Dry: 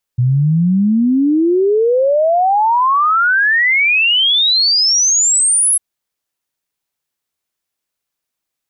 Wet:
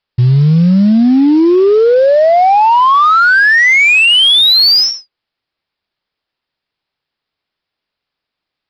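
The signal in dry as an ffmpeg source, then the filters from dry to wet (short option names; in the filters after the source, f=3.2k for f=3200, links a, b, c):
-f lavfi -i "aevalsrc='0.335*clip(min(t,5.6-t)/0.01,0,1)*sin(2*PI*120*5.6/log(11000/120)*(exp(log(11000/120)*t/5.6)-1))':d=5.6:s=44100"
-af "aresample=11025,acrusher=bits=6:mode=log:mix=0:aa=0.000001,aresample=44100,acontrast=57"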